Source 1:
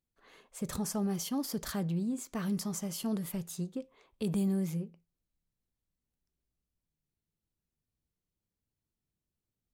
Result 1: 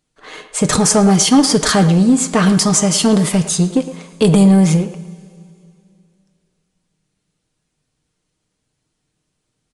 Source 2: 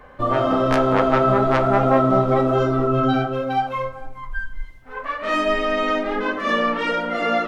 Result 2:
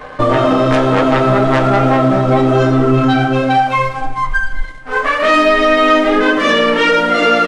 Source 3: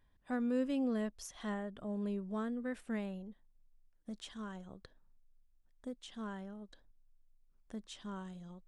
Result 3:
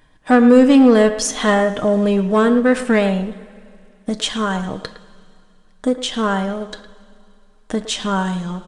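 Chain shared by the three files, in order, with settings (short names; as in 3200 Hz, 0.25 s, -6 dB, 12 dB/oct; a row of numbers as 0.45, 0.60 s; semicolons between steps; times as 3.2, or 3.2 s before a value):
low shelf 140 Hz -8 dB; comb 6.5 ms, depth 38%; dynamic EQ 890 Hz, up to -5 dB, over -31 dBFS, Q 0.78; sample leveller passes 1; compressor 3:1, threshold -23 dBFS; soft clip -16 dBFS; two-slope reverb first 0.29 s, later 2.6 s, from -16 dB, DRR 11 dB; downsampling 22050 Hz; speakerphone echo 0.11 s, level -12 dB; normalise peaks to -2 dBFS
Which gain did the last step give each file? +21.5, +13.0, +23.0 dB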